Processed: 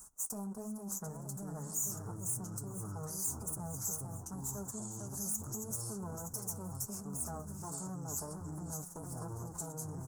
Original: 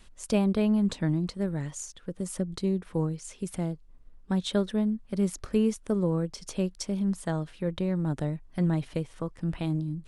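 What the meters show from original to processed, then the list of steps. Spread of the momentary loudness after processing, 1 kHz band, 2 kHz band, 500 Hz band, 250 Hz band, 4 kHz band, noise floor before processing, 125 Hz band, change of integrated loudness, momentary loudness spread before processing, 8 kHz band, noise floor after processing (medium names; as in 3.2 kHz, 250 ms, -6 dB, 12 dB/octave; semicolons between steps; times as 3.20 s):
7 LU, -6.0 dB, -17.0 dB, -16.5 dB, -17.0 dB, -15.0 dB, -53 dBFS, -12.0 dB, -10.0 dB, 9 LU, +5.5 dB, -48 dBFS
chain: comb filter that takes the minimum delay 4.8 ms; high-pass 43 Hz; treble shelf 5.8 kHz +8 dB; feedback delay 456 ms, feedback 43%, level -13 dB; waveshaping leveller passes 1; reverse; compression 5:1, threshold -39 dBFS, peak gain reduction 18.5 dB; reverse; ever faster or slower copies 617 ms, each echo -6 st, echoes 2; peak limiter -35 dBFS, peak gain reduction 8.5 dB; FFT filter 580 Hz 0 dB, 830 Hz +8 dB, 1.4 kHz +5 dB, 2.1 kHz -22 dB, 3.4 kHz -28 dB, 6.6 kHz +15 dB; flange 1.4 Hz, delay 6 ms, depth 4.7 ms, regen -57%; trim +2.5 dB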